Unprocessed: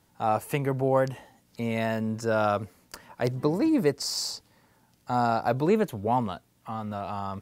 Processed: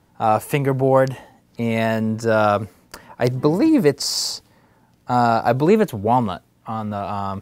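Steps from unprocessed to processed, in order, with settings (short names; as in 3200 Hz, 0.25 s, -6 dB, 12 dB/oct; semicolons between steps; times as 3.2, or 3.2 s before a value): mismatched tape noise reduction decoder only; gain +8 dB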